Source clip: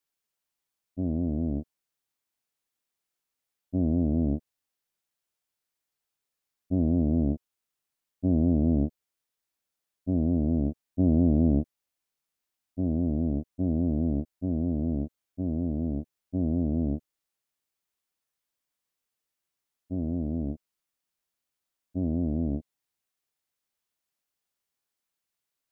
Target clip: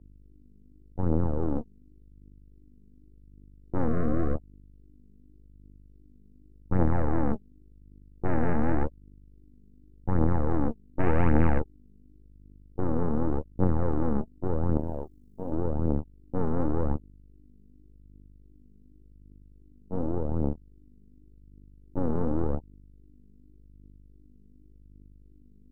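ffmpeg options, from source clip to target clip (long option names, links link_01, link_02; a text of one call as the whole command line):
ffmpeg -i in.wav -filter_complex "[0:a]asettb=1/sr,asplit=3[link_01][link_02][link_03];[link_01]atrim=end=14.774[link_04];[link_02]atrim=start=14.77:end=15.52,asetpts=PTS-STARTPTS,afade=type=in:duration=0.004:curve=qsin,afade=type=out:start_time=0.746:duration=0.004:curve=qsin,bass=frequency=250:gain=-9,treble=frequency=4000:gain=9[link_05];[link_03]atrim=start=15.516[link_06];[link_04][link_05]acrossfade=duration=0.004:curve1=hsin:curve2=qsin[link_07];[link_07][link_06]acrossfade=duration=0.004:curve1=qsin:curve2=hsin,aeval=exprs='val(0)+0.00708*(sin(2*PI*50*n/s)+sin(2*PI*2*50*n/s)/2+sin(2*PI*3*50*n/s)/3+sin(2*PI*4*50*n/s)/4+sin(2*PI*5*50*n/s)/5)':channel_layout=same,aeval=exprs='0.266*(cos(1*acos(clip(val(0)/0.266,-1,1)))-cos(1*PI/2))+0.0473*(cos(3*acos(clip(val(0)/0.266,-1,1)))-cos(3*PI/2))+0.00944*(cos(7*acos(clip(val(0)/0.266,-1,1)))-cos(7*PI/2))+0.0531*(cos(8*acos(clip(val(0)/0.266,-1,1)))-cos(8*PI/2))':channel_layout=same,aphaser=in_gain=1:out_gain=1:delay=5:decay=0.49:speed=0.88:type=triangular,tremolo=f=120:d=0.333,asettb=1/sr,asplit=3[link_08][link_09][link_10];[link_08]atrim=end=3.884[link_11];[link_09]atrim=start=3.88:end=4.35,asetpts=PTS-STARTPTS,afade=type=in:duration=0.004:curve=qsin,afade=type=out:start_time=0.466:duration=0.004:curve=qsin,asuperstop=centerf=890:order=20:qfactor=3.1[link_12];[link_10]atrim=start=4.346[link_13];[link_11][link_12]acrossfade=duration=0.004:curve1=hsin:curve2=qsin[link_14];[link_14][link_13]acrossfade=duration=0.004:curve1=qsin:curve2=hsin" out.wav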